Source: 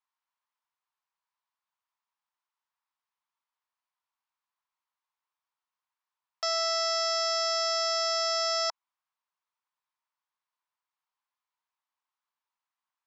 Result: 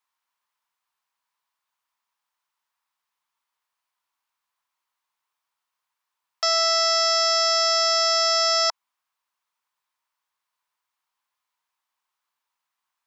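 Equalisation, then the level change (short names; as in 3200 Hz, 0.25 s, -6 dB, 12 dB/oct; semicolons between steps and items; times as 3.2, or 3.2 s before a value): low shelf 480 Hz -7.5 dB; +8.5 dB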